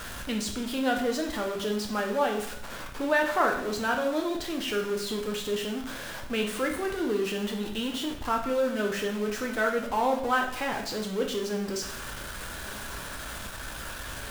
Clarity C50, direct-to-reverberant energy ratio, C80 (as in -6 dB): 7.0 dB, 1.0 dB, 10.0 dB